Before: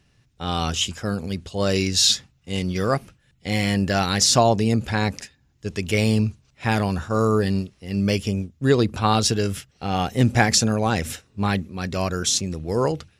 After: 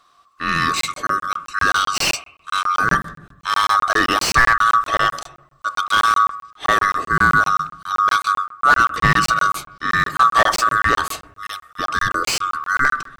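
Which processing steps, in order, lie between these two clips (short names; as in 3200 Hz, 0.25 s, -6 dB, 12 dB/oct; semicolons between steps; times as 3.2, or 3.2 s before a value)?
band-swap scrambler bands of 1000 Hz; 11.26–11.79 differentiator; on a send at -10 dB: LPF 2300 Hz 24 dB/oct + reverb RT60 0.80 s, pre-delay 7 ms; on the sum: crackling interface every 0.13 s, samples 1024, zero, from 0.81; slew limiter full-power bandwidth 320 Hz; gain +5 dB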